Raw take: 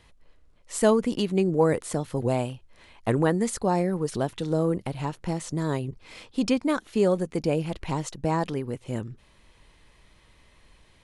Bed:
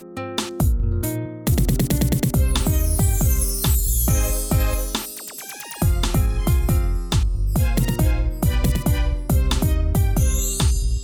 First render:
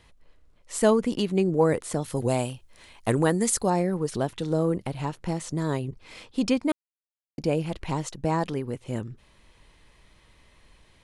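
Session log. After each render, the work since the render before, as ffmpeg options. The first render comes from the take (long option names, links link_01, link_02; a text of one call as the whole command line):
ffmpeg -i in.wav -filter_complex "[0:a]asettb=1/sr,asplit=3[link_01][link_02][link_03];[link_01]atrim=end=2.024[link_04];[link_02]atrim=start=2.02:end=3.7,asetpts=PTS-STARTPTS,afade=type=in:duration=0.004:curve=qsin,afade=type=out:start_time=1.676:duration=0.004:curve=qsin,highshelf=frequency=5000:gain=11.5[link_05];[link_03]atrim=start=3.696[link_06];[link_04][link_05]acrossfade=duration=0.004:curve1=hsin:curve2=qsin[link_07];[link_07][link_06]acrossfade=duration=0.004:curve1=qsin:curve2=hsin,asplit=3[link_08][link_09][link_10];[link_08]atrim=end=6.72,asetpts=PTS-STARTPTS,afade=type=out:start_time=6.716:duration=0.004:curve=hsin[link_11];[link_09]atrim=start=6.72:end=7.38,asetpts=PTS-STARTPTS,volume=0[link_12];[link_10]atrim=start=7.38,asetpts=PTS-STARTPTS,afade=type=in:duration=0.004:curve=hsin[link_13];[link_11][link_12][link_13]concat=n=3:v=0:a=1" out.wav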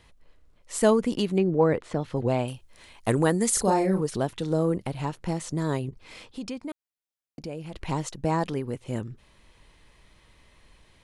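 ffmpeg -i in.wav -filter_complex "[0:a]asettb=1/sr,asplit=3[link_01][link_02][link_03];[link_01]atrim=end=1.384[link_04];[link_02]atrim=start=1.38:end=2.48,asetpts=PTS-STARTPTS,afade=type=in:duration=0.004:curve=qsin,afade=type=out:start_time=1.096:duration=0.004:curve=qsin,lowpass=3300[link_05];[link_03]atrim=start=2.476[link_06];[link_04][link_05]acrossfade=duration=0.004:curve1=hsin:curve2=qsin[link_07];[link_07][link_06]acrossfade=duration=0.004:curve1=qsin:curve2=hsin,asettb=1/sr,asplit=3[link_08][link_09][link_10];[link_08]atrim=end=3.514[link_11];[link_09]atrim=start=3.51:end=4.01,asetpts=PTS-STARTPTS,afade=type=in:duration=0.004:curve=qsin,afade=type=out:start_time=0.496:duration=0.004:curve=qsin,asplit=2[link_12][link_13];[link_13]adelay=37,volume=-3dB[link_14];[link_12][link_14]amix=inputs=2:normalize=0,atrim=end_sample=22050[link_15];[link_10]atrim=start=4.006[link_16];[link_11][link_15]acrossfade=duration=0.004:curve1=hsin:curve2=qsin[link_17];[link_17][link_16]acrossfade=duration=0.004:curve1=qsin:curve2=hsin,asettb=1/sr,asplit=3[link_18][link_19][link_20];[link_18]atrim=end=5.894[link_21];[link_19]atrim=start=5.89:end=7.74,asetpts=PTS-STARTPTS,afade=type=in:duration=0.004:curve=qsin,afade=type=out:start_time=1.846:duration=0.004:curve=qsin,acompressor=threshold=-40dB:ratio=2:attack=3.2:release=140:knee=1:detection=peak[link_22];[link_20]atrim=start=7.736[link_23];[link_21][link_22]acrossfade=duration=0.004:curve1=hsin:curve2=qsin[link_24];[link_24][link_23]acrossfade=duration=0.004:curve1=qsin:curve2=hsin" out.wav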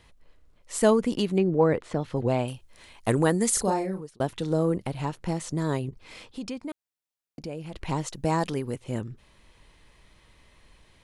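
ffmpeg -i in.wav -filter_complex "[0:a]asettb=1/sr,asplit=3[link_01][link_02][link_03];[link_01]atrim=end=8.134[link_04];[link_02]atrim=start=8.13:end=8.76,asetpts=PTS-STARTPTS,afade=type=in:duration=0.004:curve=qsin,afade=type=out:start_time=0.626:duration=0.004:curve=qsin,highshelf=frequency=4000:gain=7.5[link_05];[link_03]atrim=start=8.756[link_06];[link_04][link_05]acrossfade=duration=0.004:curve1=hsin:curve2=qsin[link_07];[link_07][link_06]acrossfade=duration=0.004:curve1=qsin:curve2=hsin,asplit=2[link_08][link_09];[link_08]atrim=end=4.2,asetpts=PTS-STARTPTS,afade=type=out:start_time=3.52:duration=0.68[link_10];[link_09]atrim=start=4.2,asetpts=PTS-STARTPTS,afade=type=in:duration=0.004:curve=hsin[link_11];[link_10][link_11]concat=n=2:v=0:a=1" out.wav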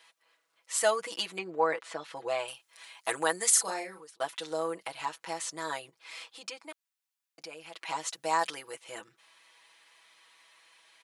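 ffmpeg -i in.wav -af "highpass=980,aecho=1:1:6.1:0.87" out.wav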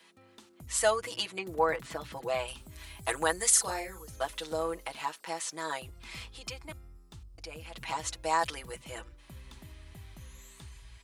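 ffmpeg -i in.wav -i bed.wav -filter_complex "[1:a]volume=-30.5dB[link_01];[0:a][link_01]amix=inputs=2:normalize=0" out.wav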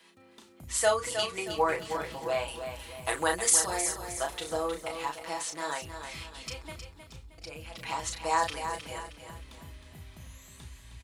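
ffmpeg -i in.wav -filter_complex "[0:a]asplit=2[link_01][link_02];[link_02]adelay=34,volume=-6dB[link_03];[link_01][link_03]amix=inputs=2:normalize=0,asplit=2[link_04][link_05];[link_05]aecho=0:1:313|626|939|1252:0.376|0.147|0.0572|0.0223[link_06];[link_04][link_06]amix=inputs=2:normalize=0" out.wav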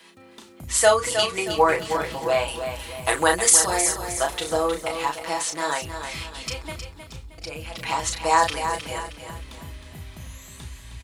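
ffmpeg -i in.wav -af "volume=8.5dB,alimiter=limit=-3dB:level=0:latency=1" out.wav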